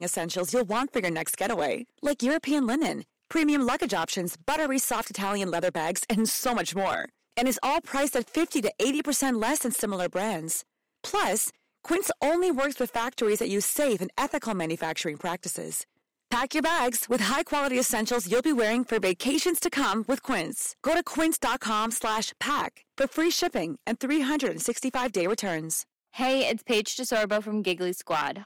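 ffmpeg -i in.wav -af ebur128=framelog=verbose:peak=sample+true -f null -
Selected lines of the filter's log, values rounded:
Integrated loudness:
  I:         -27.1 LUFS
  Threshold: -37.2 LUFS
Loudness range:
  LRA:         2.2 LU
  Threshold: -47.1 LUFS
  LRA low:   -28.0 LUFS
  LRA high:  -25.7 LUFS
Sample peak:
  Peak:      -17.7 dBFS
True peak:
  Peak:      -16.1 dBFS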